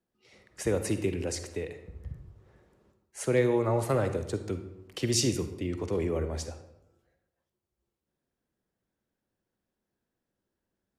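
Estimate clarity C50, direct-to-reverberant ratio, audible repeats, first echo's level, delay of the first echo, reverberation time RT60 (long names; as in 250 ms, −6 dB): 9.5 dB, 8.5 dB, no echo audible, no echo audible, no echo audible, 0.85 s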